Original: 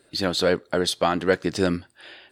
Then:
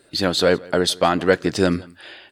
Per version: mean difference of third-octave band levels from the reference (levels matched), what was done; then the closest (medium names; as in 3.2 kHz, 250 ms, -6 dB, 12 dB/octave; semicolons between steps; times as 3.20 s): 1.0 dB: delay 166 ms -23 dB; trim +4 dB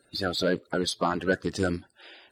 2.5 dB: coarse spectral quantiser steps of 30 dB; trim -4 dB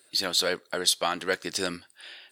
5.5 dB: tilt EQ +3.5 dB/octave; trim -5 dB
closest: first